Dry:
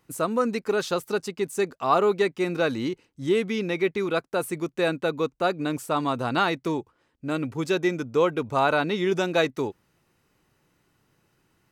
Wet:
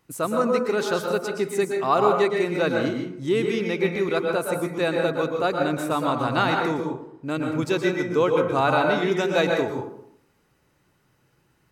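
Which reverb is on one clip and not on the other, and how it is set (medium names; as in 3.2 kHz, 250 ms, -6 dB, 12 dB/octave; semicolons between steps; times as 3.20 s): plate-style reverb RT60 0.7 s, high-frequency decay 0.45×, pre-delay 105 ms, DRR 1.5 dB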